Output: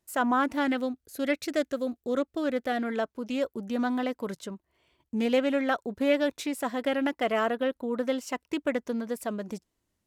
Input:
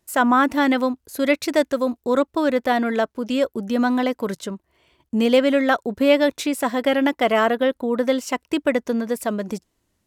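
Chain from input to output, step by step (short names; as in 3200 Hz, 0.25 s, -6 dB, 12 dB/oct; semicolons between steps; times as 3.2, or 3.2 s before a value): 0.68–2.88 bell 990 Hz -14.5 dB 0.24 oct; Doppler distortion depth 0.11 ms; gain -8.5 dB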